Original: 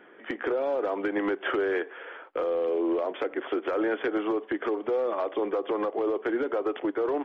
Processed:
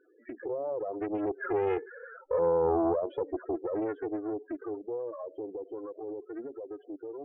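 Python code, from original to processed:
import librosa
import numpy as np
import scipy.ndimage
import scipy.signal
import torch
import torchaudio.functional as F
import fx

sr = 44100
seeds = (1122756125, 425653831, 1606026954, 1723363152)

y = fx.doppler_pass(x, sr, speed_mps=9, closest_m=6.8, pass_at_s=2.36)
y = fx.low_shelf(y, sr, hz=84.0, db=10.0)
y = fx.spec_topn(y, sr, count=8)
y = fx.high_shelf(y, sr, hz=2800.0, db=-8.5)
y = fx.doppler_dist(y, sr, depth_ms=0.55)
y = y * librosa.db_to_amplitude(2.5)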